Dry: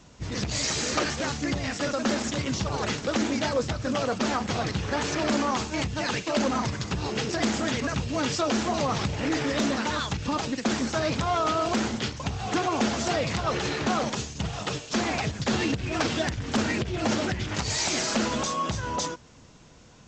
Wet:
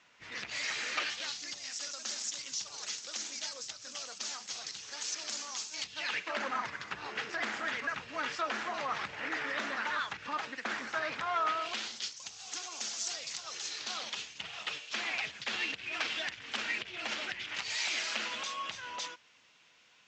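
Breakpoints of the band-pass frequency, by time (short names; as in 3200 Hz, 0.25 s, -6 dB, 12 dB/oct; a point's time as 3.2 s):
band-pass, Q 1.6
0.87 s 2100 Hz
1.58 s 6100 Hz
5.71 s 6100 Hz
6.25 s 1700 Hz
11.46 s 1700 Hz
12.1 s 6200 Hz
13.67 s 6200 Hz
14.27 s 2600 Hz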